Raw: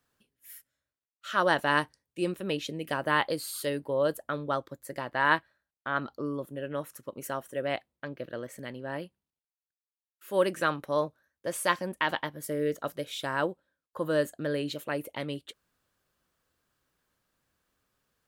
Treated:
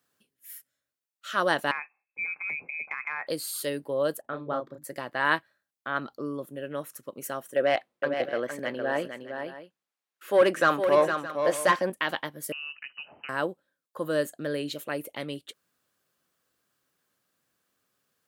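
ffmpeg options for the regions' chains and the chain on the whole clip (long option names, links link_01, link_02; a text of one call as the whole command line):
ffmpeg -i in.wav -filter_complex "[0:a]asettb=1/sr,asplit=3[link_01][link_02][link_03];[link_01]atrim=end=1.714[link_04];[link_02]atrim=start=1.71:end=3.27,asetpts=PTS-STARTPTS,afade=type=in:duration=0.004:curve=qsin,afade=type=out:start_time=1.556:duration=0.004:curve=qsin,lowpass=frequency=2300:width_type=q:width=0.5098,lowpass=frequency=2300:width_type=q:width=0.6013,lowpass=frequency=2300:width_type=q:width=0.9,lowpass=frequency=2300:width_type=q:width=2.563,afreqshift=-2700,acompressor=threshold=-29dB:ratio=4:attack=3.2:release=140:knee=1:detection=peak[link_05];[link_03]atrim=start=3.266[link_06];[link_04][link_05]acrossfade=duration=0.004:curve1=hsin:curve2=qsin[link_07];[link_07][link_06]acrossfade=duration=0.004:curve1=qsin:curve2=hsin,asettb=1/sr,asplit=3[link_08][link_09][link_10];[link_08]atrim=end=4.214[link_11];[link_09]atrim=start=4.21:end=4.84,asetpts=PTS-STARTPTS,afade=type=in:duration=0.004:curve=qsin,afade=type=out:start_time=0.626:duration=0.004:curve=qsin,lowpass=frequency=1100:poles=1,bandreject=frequency=50:width_type=h:width=6,bandreject=frequency=100:width_type=h:width=6,bandreject=frequency=150:width_type=h:width=6,bandreject=frequency=200:width_type=h:width=6,bandreject=frequency=250:width_type=h:width=6,bandreject=frequency=300:width_type=h:width=6,asplit=2[link_12][link_13];[link_13]adelay=33,volume=-4dB[link_14];[link_12][link_14]amix=inputs=2:normalize=0,atrim=end_sample=27783[link_15];[link_10]atrim=start=4.836[link_16];[link_11][link_15]acrossfade=duration=0.004:curve1=hsin:curve2=qsin[link_17];[link_17][link_16]acrossfade=duration=0.004:curve1=qsin:curve2=hsin,asettb=1/sr,asplit=3[link_18][link_19][link_20];[link_18]atrim=end=7.564[link_21];[link_19]atrim=start=7.56:end=11.9,asetpts=PTS-STARTPTS,afade=type=in:duration=0.004:curve=qsin,afade=type=out:start_time=4.336:duration=0.004:curve=qsin,asplit=2[link_22][link_23];[link_23]highpass=frequency=720:poles=1,volume=19dB,asoftclip=type=tanh:threshold=-8dB[link_24];[link_22][link_24]amix=inputs=2:normalize=0,lowpass=frequency=1400:poles=1,volume=-6dB,aecho=1:1:461|618:0.447|0.168,atrim=end_sample=191394[link_25];[link_20]atrim=start=11.896[link_26];[link_21][link_25]acrossfade=duration=0.004:curve1=hsin:curve2=qsin[link_27];[link_27][link_26]acrossfade=duration=0.004:curve1=qsin:curve2=hsin,asettb=1/sr,asplit=3[link_28][link_29][link_30];[link_28]atrim=end=12.524[link_31];[link_29]atrim=start=12.52:end=13.29,asetpts=PTS-STARTPTS,afade=type=in:duration=0.004:curve=qsin,afade=type=out:start_time=0.766:duration=0.004:curve=qsin,acompressor=threshold=-37dB:ratio=5:attack=3.2:release=140:knee=1:detection=peak,acrusher=bits=5:mode=log:mix=0:aa=0.000001,lowpass=frequency=2600:width_type=q:width=0.5098,lowpass=frequency=2600:width_type=q:width=0.6013,lowpass=frequency=2600:width_type=q:width=0.9,lowpass=frequency=2600:width_type=q:width=2.563,afreqshift=-3100[link_32];[link_30]atrim=start=13.286[link_33];[link_31][link_32]acrossfade=duration=0.004:curve1=hsin:curve2=qsin[link_34];[link_34][link_33]acrossfade=duration=0.004:curve1=qsin:curve2=hsin,highpass=140,highshelf=frequency=5200:gain=4.5,bandreject=frequency=930:width=15" out.wav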